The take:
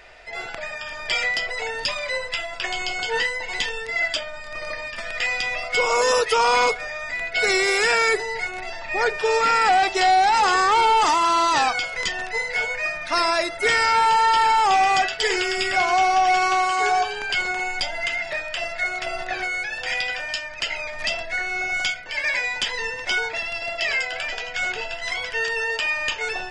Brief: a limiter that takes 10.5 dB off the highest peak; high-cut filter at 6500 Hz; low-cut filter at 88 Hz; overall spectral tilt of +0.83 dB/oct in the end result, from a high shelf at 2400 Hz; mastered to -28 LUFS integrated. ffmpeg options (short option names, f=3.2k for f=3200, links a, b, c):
-af "highpass=88,lowpass=6.5k,highshelf=f=2.4k:g=-7,alimiter=limit=-20dB:level=0:latency=1"